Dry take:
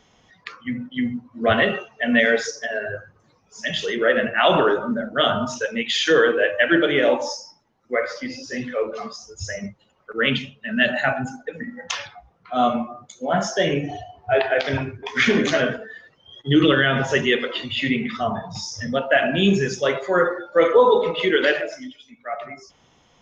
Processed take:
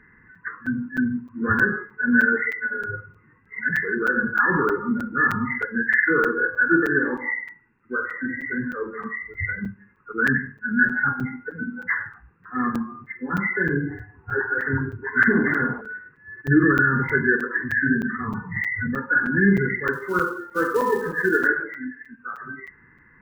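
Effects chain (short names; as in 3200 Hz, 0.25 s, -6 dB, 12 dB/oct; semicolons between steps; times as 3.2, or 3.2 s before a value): nonlinear frequency compression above 1400 Hz 4:1; in parallel at -3 dB: compressor 12:1, threshold -29 dBFS, peak gain reduction 19.5 dB; 19.93–21.47 on the sum: short-mantissa float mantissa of 4-bit; Butterworth band-stop 650 Hz, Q 1; on a send at -18 dB: reverb RT60 0.50 s, pre-delay 48 ms; 15.31–15.8 on the sum: band noise 380–1200 Hz -41 dBFS; crackling interface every 0.31 s, samples 256, zero, from 0.35; gain -1 dB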